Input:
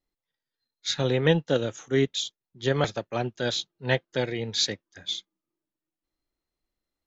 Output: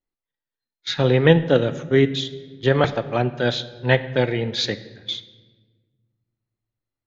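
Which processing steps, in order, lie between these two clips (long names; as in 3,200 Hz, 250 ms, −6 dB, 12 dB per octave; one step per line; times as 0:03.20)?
low-pass filter 3,200 Hz 12 dB per octave
noise gate −43 dBFS, range −11 dB
on a send: convolution reverb RT60 1.4 s, pre-delay 16 ms, DRR 13 dB
on the sum: level +7 dB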